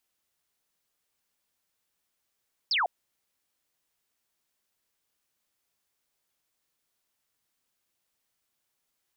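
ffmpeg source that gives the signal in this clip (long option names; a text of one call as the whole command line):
ffmpeg -f lavfi -i "aevalsrc='0.0708*clip(t/0.002,0,1)*clip((0.15-t)/0.002,0,1)*sin(2*PI*5500*0.15/log(640/5500)*(exp(log(640/5500)*t/0.15)-1))':duration=0.15:sample_rate=44100" out.wav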